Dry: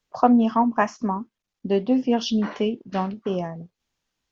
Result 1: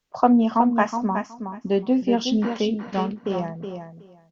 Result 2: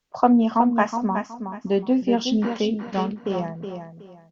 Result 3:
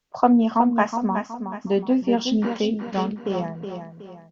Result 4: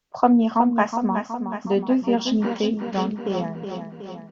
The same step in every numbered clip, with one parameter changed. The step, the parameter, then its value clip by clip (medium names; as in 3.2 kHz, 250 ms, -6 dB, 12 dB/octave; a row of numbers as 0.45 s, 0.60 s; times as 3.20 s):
feedback delay, feedback: 16%, 26%, 39%, 59%